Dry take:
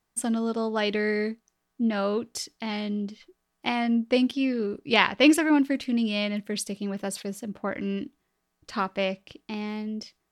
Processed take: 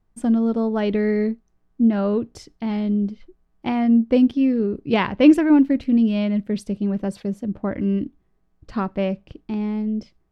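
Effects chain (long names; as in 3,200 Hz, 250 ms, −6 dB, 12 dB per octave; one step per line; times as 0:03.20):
spectral tilt −4 dB per octave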